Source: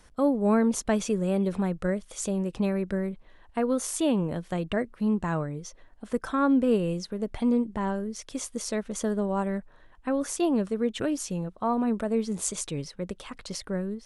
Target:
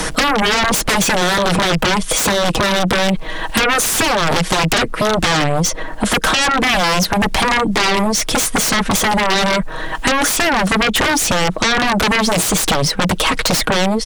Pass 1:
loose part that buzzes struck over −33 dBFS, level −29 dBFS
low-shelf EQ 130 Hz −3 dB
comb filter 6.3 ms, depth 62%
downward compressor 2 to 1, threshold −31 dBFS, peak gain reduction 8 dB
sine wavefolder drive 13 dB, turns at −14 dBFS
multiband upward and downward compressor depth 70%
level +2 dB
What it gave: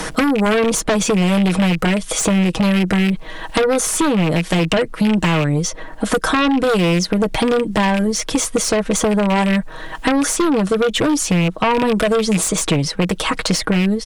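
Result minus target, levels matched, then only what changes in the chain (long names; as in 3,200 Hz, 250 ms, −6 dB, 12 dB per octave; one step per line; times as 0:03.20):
sine wavefolder: distortion −26 dB
change: sine wavefolder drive 22 dB, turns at −14 dBFS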